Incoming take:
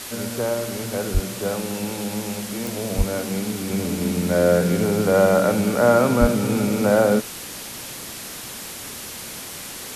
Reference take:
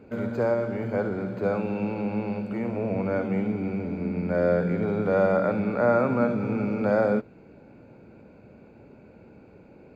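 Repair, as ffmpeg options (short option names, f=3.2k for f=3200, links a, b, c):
-filter_complex "[0:a]adeclick=t=4,asplit=3[a][b][c];[a]afade=t=out:st=1.13:d=0.02[d];[b]highpass=f=140:w=0.5412,highpass=f=140:w=1.3066,afade=t=in:st=1.13:d=0.02,afade=t=out:st=1.25:d=0.02[e];[c]afade=t=in:st=1.25:d=0.02[f];[d][e][f]amix=inputs=3:normalize=0,asplit=3[g][h][i];[g]afade=t=out:st=2.97:d=0.02[j];[h]highpass=f=140:w=0.5412,highpass=f=140:w=1.3066,afade=t=in:st=2.97:d=0.02,afade=t=out:st=3.09:d=0.02[k];[i]afade=t=in:st=3.09:d=0.02[l];[j][k][l]amix=inputs=3:normalize=0,asplit=3[m][n][o];[m]afade=t=out:st=6.2:d=0.02[p];[n]highpass=f=140:w=0.5412,highpass=f=140:w=1.3066,afade=t=in:st=6.2:d=0.02,afade=t=out:st=6.32:d=0.02[q];[o]afade=t=in:st=6.32:d=0.02[r];[p][q][r]amix=inputs=3:normalize=0,afwtdn=0.022,asetnsamples=n=441:p=0,asendcmd='3.7 volume volume -5.5dB',volume=0dB"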